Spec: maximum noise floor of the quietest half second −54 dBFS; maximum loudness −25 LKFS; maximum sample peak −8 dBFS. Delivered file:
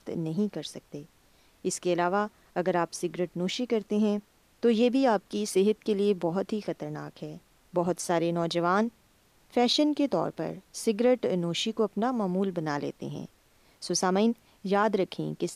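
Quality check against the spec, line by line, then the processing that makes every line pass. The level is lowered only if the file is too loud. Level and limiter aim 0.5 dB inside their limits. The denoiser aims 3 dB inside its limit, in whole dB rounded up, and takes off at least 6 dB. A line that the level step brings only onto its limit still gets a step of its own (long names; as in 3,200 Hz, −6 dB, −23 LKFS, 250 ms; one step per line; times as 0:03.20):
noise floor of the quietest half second −63 dBFS: in spec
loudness −28.5 LKFS: in spec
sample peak −12.5 dBFS: in spec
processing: no processing needed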